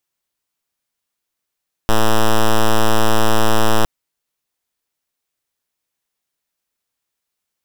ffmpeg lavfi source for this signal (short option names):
-f lavfi -i "aevalsrc='0.299*(2*lt(mod(110*t,1),0.05)-1)':d=1.96:s=44100"